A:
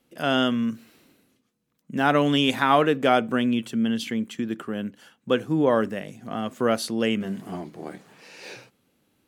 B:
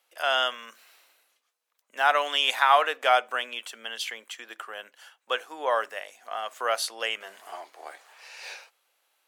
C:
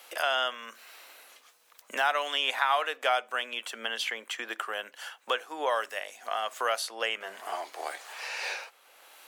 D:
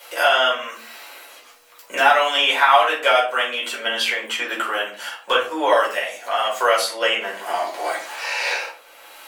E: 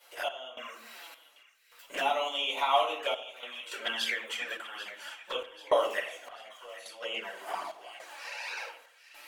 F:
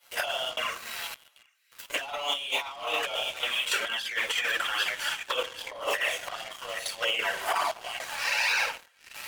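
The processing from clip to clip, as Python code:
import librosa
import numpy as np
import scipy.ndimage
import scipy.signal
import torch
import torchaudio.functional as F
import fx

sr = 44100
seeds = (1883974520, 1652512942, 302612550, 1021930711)

y1 = scipy.signal.sosfilt(scipy.signal.butter(4, 670.0, 'highpass', fs=sr, output='sos'), x)
y1 = F.gain(torch.from_numpy(y1), 1.5).numpy()
y2 = fx.band_squash(y1, sr, depth_pct=70)
y2 = F.gain(torch.from_numpy(y2), -2.0).numpy()
y3 = fx.room_shoebox(y2, sr, seeds[0], volume_m3=280.0, walls='furnished', distance_m=4.8)
y3 = F.gain(torch.from_numpy(y3), 3.0).numpy()
y4 = fx.env_flanger(y3, sr, rest_ms=8.6, full_db=-16.0)
y4 = fx.tremolo_random(y4, sr, seeds[1], hz=3.5, depth_pct=95)
y4 = fx.echo_split(y4, sr, split_hz=1700.0, low_ms=83, high_ms=789, feedback_pct=52, wet_db=-14)
y4 = F.gain(torch.from_numpy(y4), -6.0).numpy()
y5 = fx.highpass(y4, sr, hz=920.0, slope=6)
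y5 = fx.leveller(y5, sr, passes=3)
y5 = fx.over_compress(y5, sr, threshold_db=-28.0, ratio=-0.5)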